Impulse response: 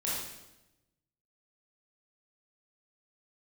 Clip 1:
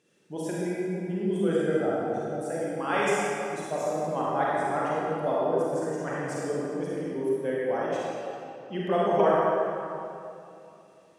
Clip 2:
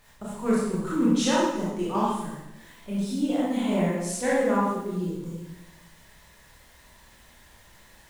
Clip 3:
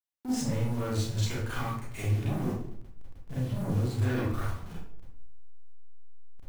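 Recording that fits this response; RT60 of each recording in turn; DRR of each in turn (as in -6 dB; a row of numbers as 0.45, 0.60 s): 2; 2.7, 0.95, 0.60 s; -7.0, -7.5, -8.5 dB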